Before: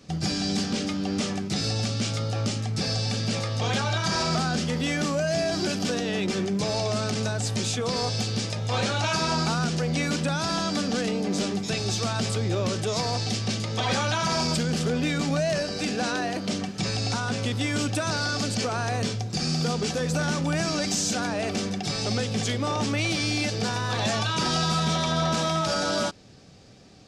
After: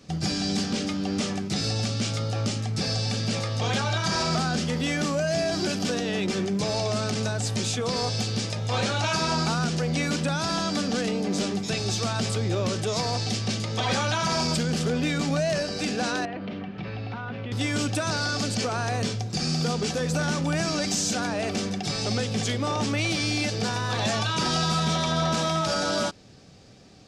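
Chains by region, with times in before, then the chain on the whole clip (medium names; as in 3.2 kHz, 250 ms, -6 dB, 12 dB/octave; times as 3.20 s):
16.25–17.52 s: low-pass 2.9 kHz 24 dB/octave + compression 5:1, threshold -30 dBFS
whole clip: none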